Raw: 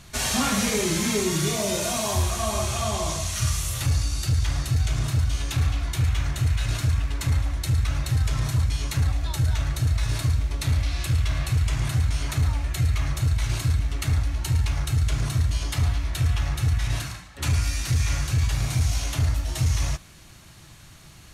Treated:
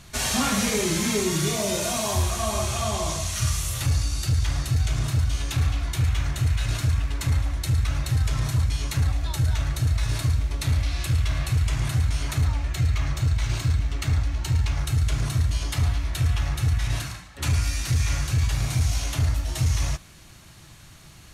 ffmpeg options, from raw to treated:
-filter_complex "[0:a]asettb=1/sr,asplit=3[a][b][c];[a]atrim=end=12.454[d];[b]atrim=start=12.45:end=14.79,asetpts=PTS-STARTPTS,afade=t=in:d=0.004:c=qsin,afade=t=out:st=2.336:d=0.004:c=qsin,equalizer=f=11k:t=o:w=0.49:g=-9.5[e];[c]atrim=start=14.786[f];[d][e]acrossfade=d=0.004:c1=hsin:c2=qsin[g];[g][f]acrossfade=d=0.004:c1=qsin:c2=hsin"

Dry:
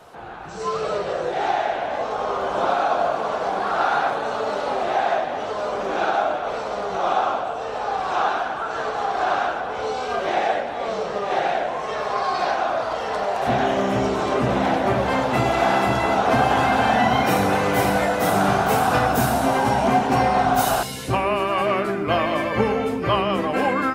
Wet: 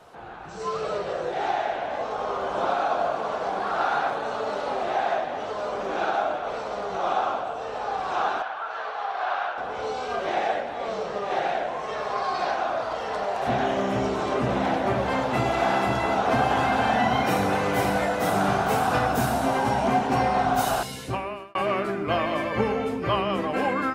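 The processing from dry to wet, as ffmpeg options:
-filter_complex "[0:a]asettb=1/sr,asplit=3[a][b][c];[a]atrim=end=8.424[d];[b]atrim=start=8.42:end=9.58,asetpts=PTS-STARTPTS,afade=t=in:d=0.004:c=qsin,afade=t=out:st=1.156:d=0.004:c=qsin,acrossover=split=550 4700:gain=0.1 1 0.126[e][f][g];[e][f][g]amix=inputs=3:normalize=0[h];[c]atrim=start=9.576[i];[d][h]acrossfade=d=0.004:c1=hsin:c2=qsin[j];[j][i]acrossfade=d=0.004:c1=qsin:c2=hsin,asplit=2[k][l];[k]atrim=end=21.55,asetpts=PTS-STARTPTS,afade=t=out:st=20.95:d=0.6[m];[l]atrim=start=21.55,asetpts=PTS-STARTPTS,afade=t=in:d=0.004:c=hsin[n];[m][n]concat=n=2:v=0:a=1,highshelf=f=12k:g=-6,volume=-4dB"

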